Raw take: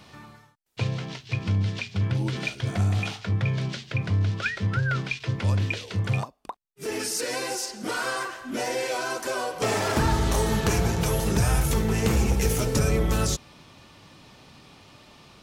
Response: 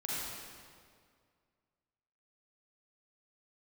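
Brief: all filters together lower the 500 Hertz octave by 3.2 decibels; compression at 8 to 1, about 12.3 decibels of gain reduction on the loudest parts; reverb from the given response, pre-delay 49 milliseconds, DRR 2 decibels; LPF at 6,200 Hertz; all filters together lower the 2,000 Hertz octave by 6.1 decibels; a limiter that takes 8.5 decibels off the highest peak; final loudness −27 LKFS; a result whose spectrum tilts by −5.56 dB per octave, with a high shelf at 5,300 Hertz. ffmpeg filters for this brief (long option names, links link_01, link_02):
-filter_complex "[0:a]lowpass=6200,equalizer=frequency=500:width_type=o:gain=-3.5,equalizer=frequency=2000:width_type=o:gain=-7,highshelf=frequency=5300:gain=-7.5,acompressor=threshold=-32dB:ratio=8,alimiter=level_in=6.5dB:limit=-24dB:level=0:latency=1,volume=-6.5dB,asplit=2[link_01][link_02];[1:a]atrim=start_sample=2205,adelay=49[link_03];[link_02][link_03]afir=irnorm=-1:irlink=0,volume=-6dB[link_04];[link_01][link_04]amix=inputs=2:normalize=0,volume=10.5dB"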